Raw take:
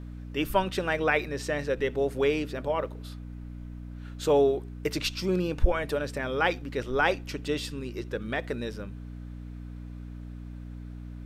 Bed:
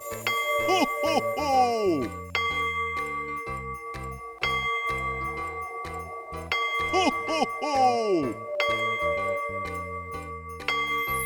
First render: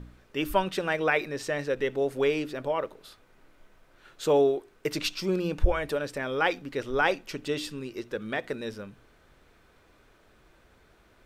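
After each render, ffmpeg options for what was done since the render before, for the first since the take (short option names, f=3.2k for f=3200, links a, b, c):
-af "bandreject=f=60:t=h:w=4,bandreject=f=120:t=h:w=4,bandreject=f=180:t=h:w=4,bandreject=f=240:t=h:w=4,bandreject=f=300:t=h:w=4"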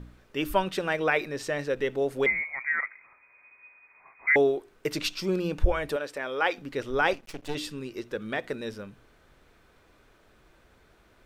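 -filter_complex "[0:a]asettb=1/sr,asplit=3[a][b][c];[a]atrim=end=2.264[d];[b]atrim=start=2.26:end=4.36,asetpts=PTS-STARTPTS,afade=t=in:d=0.004:c=qsin,afade=t=out:st=2.096:d=0.004:c=qsin,lowpass=f=2.1k:t=q:w=0.5098,lowpass=f=2.1k:t=q:w=0.6013,lowpass=f=2.1k:t=q:w=0.9,lowpass=f=2.1k:t=q:w=2.563,afreqshift=-2500[e];[c]atrim=start=4.356[f];[d][e]acrossfade=d=0.004:c1=hsin:c2=qsin[g];[g][f]acrossfade=d=0.004:c1=qsin:c2=hsin,asettb=1/sr,asplit=3[h][i][j];[h]atrim=end=5.964[k];[i]atrim=start=5.96:end=6.58,asetpts=PTS-STARTPTS,afade=t=in:d=0.004:c=qsin,afade=t=out:st=0.616:d=0.004:c=qsin,bass=f=250:g=-15,treble=f=4k:g=-3[l];[j]atrim=start=6.576[m];[k][l]acrossfade=d=0.004:c1=hsin:c2=qsin[n];[n][m]acrossfade=d=0.004:c1=qsin:c2=hsin,asettb=1/sr,asplit=3[o][p][q];[o]atrim=end=7.134[r];[p]atrim=start=7.13:end=7.55,asetpts=PTS-STARTPTS,afade=t=in:d=0.004:c=qsin,afade=t=out:st=0.416:d=0.004:c=qsin,aeval=exprs='max(val(0),0)':c=same[s];[q]atrim=start=7.546[t];[r][s]acrossfade=d=0.004:c1=hsin:c2=qsin[u];[u][t]acrossfade=d=0.004:c1=qsin:c2=hsin"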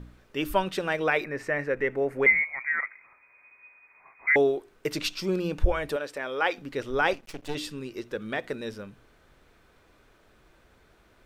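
-filter_complex "[0:a]asettb=1/sr,asplit=3[a][b][c];[a]atrim=end=1.244[d];[b]atrim=start=1.24:end=2.45,asetpts=PTS-STARTPTS,afade=t=in:d=0.004:c=qsin,afade=t=out:st=1.206:d=0.004:c=qsin,highshelf=f=2.7k:t=q:w=3:g=-8.5[e];[c]atrim=start=2.446[f];[d][e]acrossfade=d=0.004:c1=hsin:c2=qsin[g];[g][f]acrossfade=d=0.004:c1=qsin:c2=hsin"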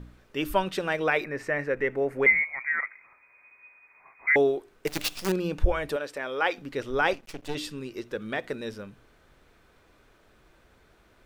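-filter_complex "[0:a]asettb=1/sr,asplit=3[a][b][c];[a]atrim=end=4.874[d];[b]atrim=start=4.87:end=5.32,asetpts=PTS-STARTPTS,afade=t=in:d=0.004:c=qsin,afade=t=out:st=0.446:d=0.004:c=qsin,acrusher=bits=5:dc=4:mix=0:aa=0.000001[e];[c]atrim=start=5.316[f];[d][e]acrossfade=d=0.004:c1=hsin:c2=qsin[g];[g][f]acrossfade=d=0.004:c1=qsin:c2=hsin"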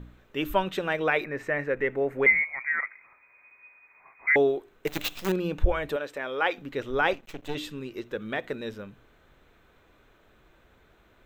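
-af "superequalizer=14b=0.398:15b=0.631:16b=0.355"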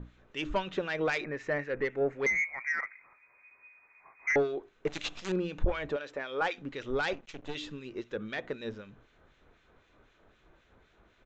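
-filter_complex "[0:a]aresample=16000,asoftclip=type=tanh:threshold=-18.5dB,aresample=44100,acrossover=split=1700[a][b];[a]aeval=exprs='val(0)*(1-0.7/2+0.7/2*cos(2*PI*3.9*n/s))':c=same[c];[b]aeval=exprs='val(0)*(1-0.7/2-0.7/2*cos(2*PI*3.9*n/s))':c=same[d];[c][d]amix=inputs=2:normalize=0"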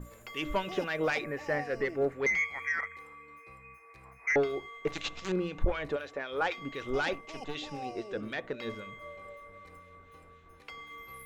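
-filter_complex "[1:a]volume=-19.5dB[a];[0:a][a]amix=inputs=2:normalize=0"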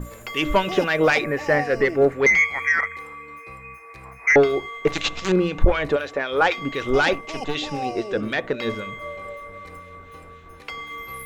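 -af "volume=12dB"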